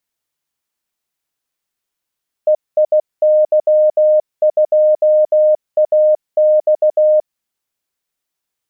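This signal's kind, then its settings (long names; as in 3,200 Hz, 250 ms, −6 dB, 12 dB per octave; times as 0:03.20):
Morse code "EIY2AX" 16 words per minute 613 Hz −7.5 dBFS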